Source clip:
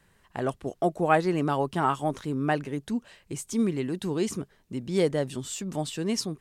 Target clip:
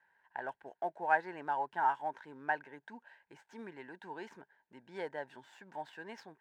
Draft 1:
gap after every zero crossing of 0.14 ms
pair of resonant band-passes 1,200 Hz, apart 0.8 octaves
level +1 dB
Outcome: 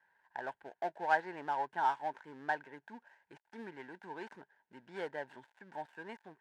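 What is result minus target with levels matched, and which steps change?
gap after every zero crossing: distortion +6 dB
change: gap after every zero crossing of 0.043 ms

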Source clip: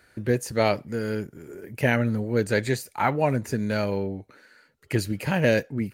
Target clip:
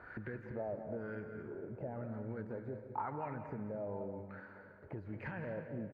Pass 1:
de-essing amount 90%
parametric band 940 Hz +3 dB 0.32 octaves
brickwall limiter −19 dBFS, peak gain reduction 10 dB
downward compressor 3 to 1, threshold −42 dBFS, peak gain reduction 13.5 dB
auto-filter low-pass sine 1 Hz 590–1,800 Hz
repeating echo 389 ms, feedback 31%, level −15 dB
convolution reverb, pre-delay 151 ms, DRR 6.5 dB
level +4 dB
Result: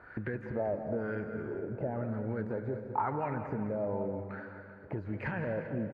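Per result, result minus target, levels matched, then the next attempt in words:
echo 168 ms late; downward compressor: peak gain reduction −7.5 dB
de-essing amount 90%
parametric band 940 Hz +3 dB 0.32 octaves
brickwall limiter −19 dBFS, peak gain reduction 10 dB
downward compressor 3 to 1, threshold −42 dBFS, peak gain reduction 13.5 dB
auto-filter low-pass sine 1 Hz 590–1,800 Hz
repeating echo 221 ms, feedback 31%, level −15 dB
convolution reverb, pre-delay 151 ms, DRR 6.5 dB
level +4 dB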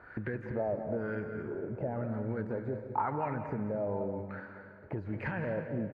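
downward compressor: peak gain reduction −7.5 dB
de-essing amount 90%
parametric band 940 Hz +3 dB 0.32 octaves
brickwall limiter −19 dBFS, peak gain reduction 10 dB
downward compressor 3 to 1, threshold −53.5 dBFS, peak gain reduction 21 dB
auto-filter low-pass sine 1 Hz 590–1,800 Hz
repeating echo 221 ms, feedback 31%, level −15 dB
convolution reverb, pre-delay 151 ms, DRR 6.5 dB
level +4 dB

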